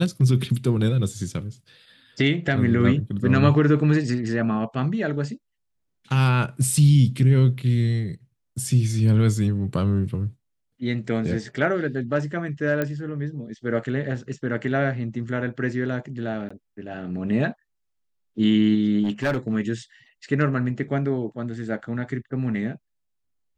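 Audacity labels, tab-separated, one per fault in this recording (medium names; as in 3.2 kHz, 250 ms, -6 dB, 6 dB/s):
12.820000	12.820000	pop -12 dBFS
16.490000	16.500000	dropout 15 ms
19.030000	19.550000	clipped -18.5 dBFS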